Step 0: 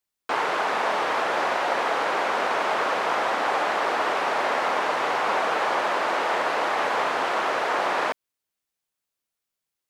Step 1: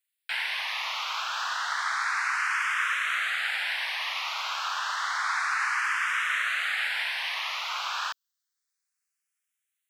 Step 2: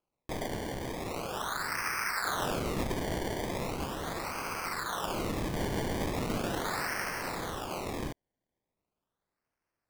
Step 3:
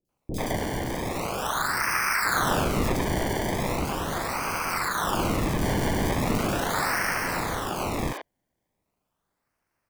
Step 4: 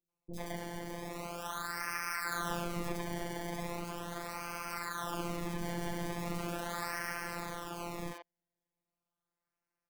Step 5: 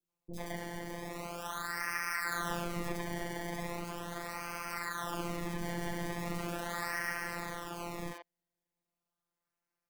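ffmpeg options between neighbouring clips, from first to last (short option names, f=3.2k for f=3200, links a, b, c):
-filter_complex "[0:a]highpass=f=1.4k:w=0.5412,highpass=f=1.4k:w=1.3066,asplit=2[a][b];[b]afreqshift=0.3[c];[a][c]amix=inputs=2:normalize=1,volume=4.5dB"
-af "acrusher=samples=23:mix=1:aa=0.000001:lfo=1:lforange=23:lforate=0.39,volume=-4.5dB"
-filter_complex "[0:a]acrossover=split=440|3900[a][b][c];[c]adelay=50[d];[b]adelay=90[e];[a][e][d]amix=inputs=3:normalize=0,volume=8.5dB"
-af "afftfilt=real='hypot(re,im)*cos(PI*b)':imag='0':win_size=1024:overlap=0.75,volume=-9dB"
-af "adynamicequalizer=threshold=0.00141:dfrequency=1900:dqfactor=7.5:tfrequency=1900:tqfactor=7.5:attack=5:release=100:ratio=0.375:range=3.5:mode=boostabove:tftype=bell"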